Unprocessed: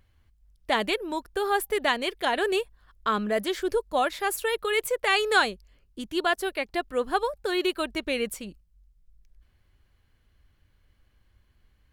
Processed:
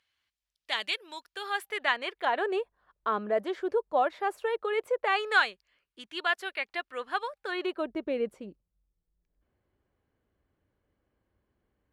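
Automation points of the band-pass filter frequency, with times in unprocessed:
band-pass filter, Q 0.88
1.26 s 3.6 kHz
2.61 s 680 Hz
5.01 s 680 Hz
5.43 s 2 kHz
7.39 s 2 kHz
7.87 s 430 Hz

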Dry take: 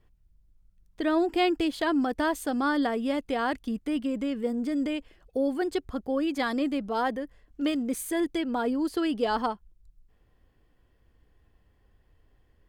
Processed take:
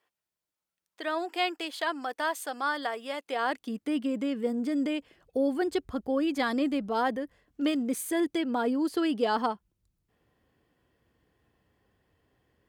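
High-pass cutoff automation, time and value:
3.18 s 670 Hz
3.96 s 160 Hz
4.75 s 160 Hz
5.62 s 57 Hz
6.95 s 57 Hz
7.62 s 120 Hz

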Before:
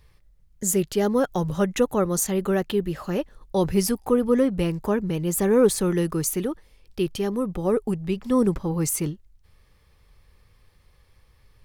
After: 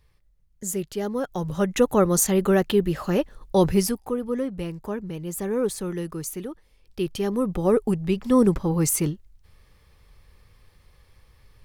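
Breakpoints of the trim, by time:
1.20 s -6 dB
1.96 s +3.5 dB
3.66 s +3.5 dB
4.15 s -7 dB
6.50 s -7 dB
7.49 s +2.5 dB

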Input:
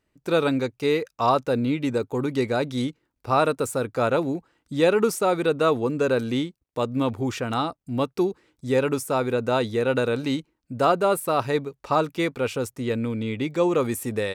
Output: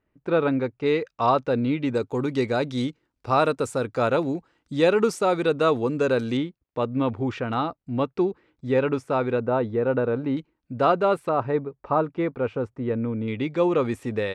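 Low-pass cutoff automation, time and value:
2.1 kHz
from 0.86 s 3.7 kHz
from 1.95 s 6.8 kHz
from 6.37 s 2.8 kHz
from 9.40 s 1.3 kHz
from 10.37 s 3.3 kHz
from 11.29 s 1.4 kHz
from 13.28 s 3.6 kHz

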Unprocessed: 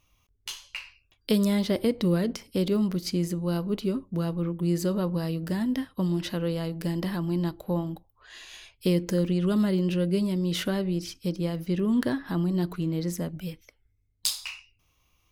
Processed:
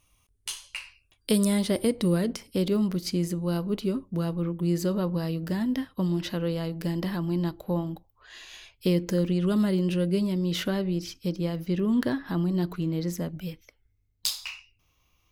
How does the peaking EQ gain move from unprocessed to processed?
peaking EQ 9.3 kHz 0.4 oct
2.00 s +13.5 dB
2.56 s +1.5 dB
4.24 s +1.5 dB
5.03 s -5 dB
9.00 s -5 dB
9.96 s +6 dB
10.29 s -6 dB

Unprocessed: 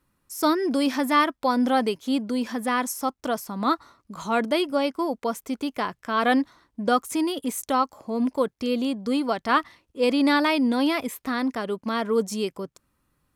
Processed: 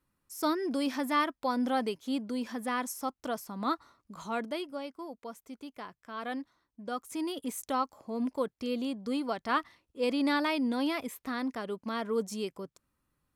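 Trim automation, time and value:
4.15 s -8 dB
4.87 s -16 dB
6.87 s -16 dB
7.31 s -8 dB

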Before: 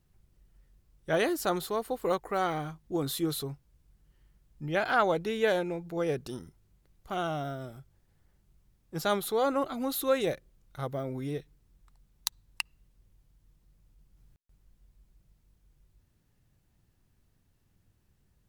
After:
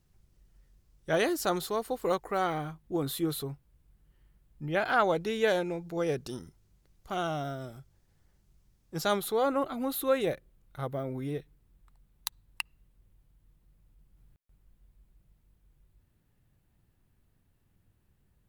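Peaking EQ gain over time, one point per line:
peaking EQ 5.8 kHz 1 oct
2.08 s +3 dB
2.72 s -5.5 dB
4.70 s -5.5 dB
5.34 s +3.5 dB
9.07 s +3.5 dB
9.48 s -7 dB

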